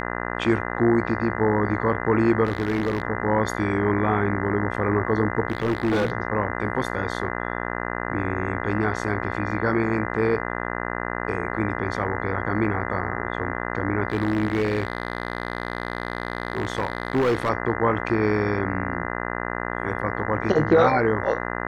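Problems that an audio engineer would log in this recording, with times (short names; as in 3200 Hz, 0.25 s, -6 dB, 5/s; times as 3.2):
buzz 60 Hz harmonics 34 -29 dBFS
2.44–3.02 clipped -18.5 dBFS
5.48–6.12 clipped -18 dBFS
9.51 gap 3.3 ms
14.08–17.5 clipped -17 dBFS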